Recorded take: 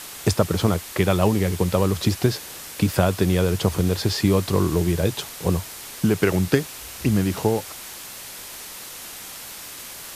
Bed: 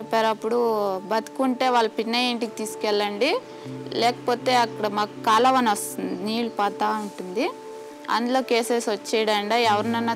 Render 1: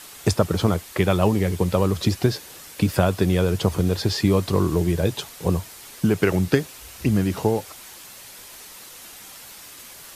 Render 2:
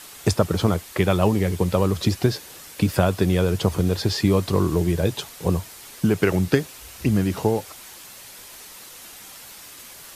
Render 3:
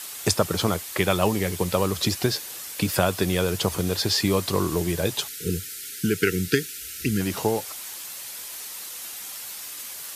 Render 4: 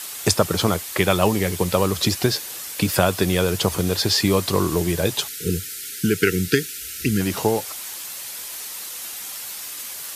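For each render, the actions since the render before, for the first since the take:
noise reduction 6 dB, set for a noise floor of -38 dBFS
no audible change
5.28–7.20 s: spectral selection erased 490–1300 Hz; tilt EQ +2 dB/octave
trim +3.5 dB; peak limiter -2 dBFS, peak gain reduction 1 dB

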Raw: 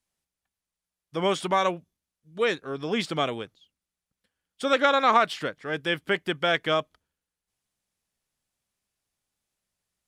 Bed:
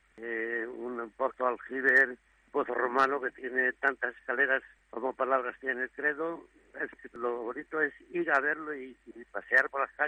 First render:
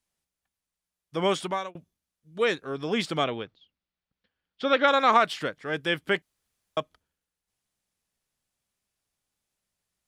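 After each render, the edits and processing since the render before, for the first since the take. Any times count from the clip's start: 1.35–1.75 s: fade out; 3.24–4.88 s: low-pass 4.6 kHz 24 dB/octave; 6.22–6.77 s: room tone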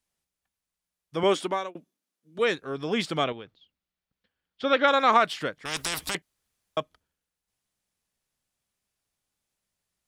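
1.23–2.39 s: resonant high-pass 270 Hz, resonance Q 1.8; 3.32–4.64 s: compression 3:1, threshold -38 dBFS; 5.65–6.15 s: spectrum-flattening compressor 10:1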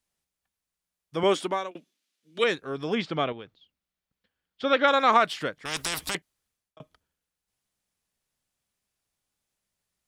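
1.71–2.44 s: frequency weighting D; 2.95–3.39 s: distance through air 160 m; 6.13–6.80 s: fade out equal-power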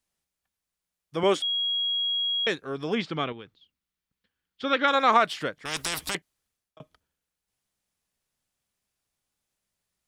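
1.42–2.47 s: bleep 3.3 kHz -24 dBFS; 3.08–4.95 s: peaking EQ 630 Hz -7 dB 0.64 oct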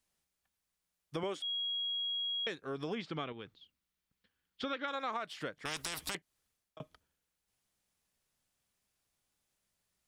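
compression 6:1, threshold -36 dBFS, peak gain reduction 19.5 dB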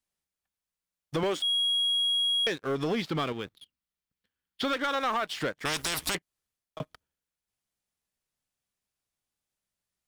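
waveshaping leveller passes 3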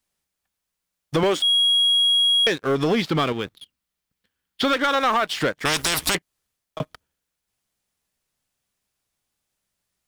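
trim +8.5 dB

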